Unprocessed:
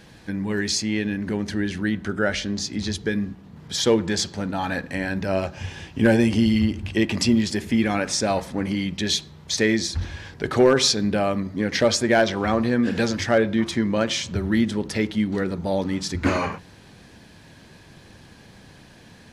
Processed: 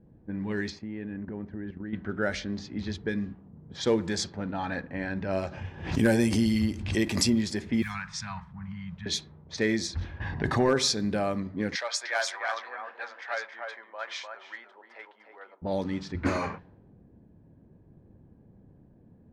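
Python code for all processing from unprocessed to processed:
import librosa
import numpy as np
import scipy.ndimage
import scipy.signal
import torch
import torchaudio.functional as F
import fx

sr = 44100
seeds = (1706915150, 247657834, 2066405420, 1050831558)

y = fx.chain(x, sr, fx.high_shelf(hz=4300.0, db=-7.5),
    fx.level_steps(step_db=10),
    fx.resample_linear(factor=2), at=(0.7, 1.93))
y = fx.chain(y, sr, fx.high_shelf(hz=6200.0, db=11.5),
    fx.pre_swell(db_per_s=69.0), at=(5.47, 7.3))
y = fx.chain(y, sr, fx.cheby1_bandstop(low_hz=170.0, high_hz=1000.0, order=3),
    fx.quant_dither(seeds[0], bits=8, dither='none'), at=(7.82, 9.06))
y = fx.chain(y, sr, fx.high_shelf(hz=4200.0, db=-7.5),
    fx.comb(ms=1.1, depth=0.53),
    fx.env_flatten(amount_pct=50), at=(10.2, 10.69))
y = fx.chain(y, sr, fx.highpass(hz=790.0, slope=24),
    fx.echo_single(ms=301, db=-5.0), at=(11.75, 15.62))
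y = fx.env_lowpass(y, sr, base_hz=350.0, full_db=-18.0)
y = fx.dynamic_eq(y, sr, hz=2900.0, q=4.7, threshold_db=-47.0, ratio=4.0, max_db=-7)
y = y * 10.0 ** (-6.0 / 20.0)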